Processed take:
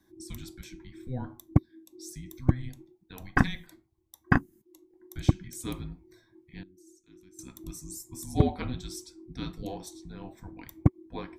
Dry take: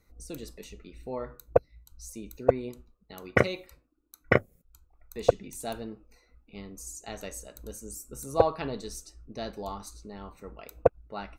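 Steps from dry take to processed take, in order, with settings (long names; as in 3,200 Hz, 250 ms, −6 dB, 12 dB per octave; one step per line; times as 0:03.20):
0:06.63–0:07.39: guitar amp tone stack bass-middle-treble 10-0-1
frequency shifter −380 Hz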